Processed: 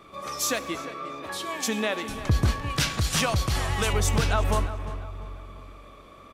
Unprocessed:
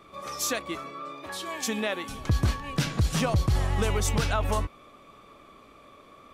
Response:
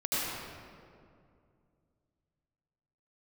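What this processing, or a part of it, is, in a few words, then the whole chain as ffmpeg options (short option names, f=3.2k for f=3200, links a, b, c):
saturated reverb return: -filter_complex "[0:a]asplit=2[a][b];[1:a]atrim=start_sample=2205[c];[b][c]afir=irnorm=-1:irlink=0,asoftclip=type=tanh:threshold=-19.5dB,volume=-19.5dB[d];[a][d]amix=inputs=2:normalize=0,asettb=1/sr,asplit=3[e][f][g];[e]atrim=end=2.704[h];[f]atrim=start=2.7:end=3.93,asetpts=PTS-STARTPTS,afade=t=in:d=0.004:c=qsin,afade=t=out:st=1.226:d=0.004:c=qsin,tiltshelf=f=810:g=-5.5[i];[g]atrim=start=3.926[j];[h][i]acrossfade=d=0.004:c1=hsin:c2=qsin[k];[k][j]acrossfade=d=0.004:c1=qsin:c2=hsin,asplit=2[l][m];[m]adelay=348,lowpass=f=2.7k:p=1,volume=-12.5dB,asplit=2[n][o];[o]adelay=348,lowpass=f=2.7k:p=1,volume=0.43,asplit=2[p][q];[q]adelay=348,lowpass=f=2.7k:p=1,volume=0.43,asplit=2[r][s];[s]adelay=348,lowpass=f=2.7k:p=1,volume=0.43[t];[l][n][p][r][t]amix=inputs=5:normalize=0,volume=1.5dB"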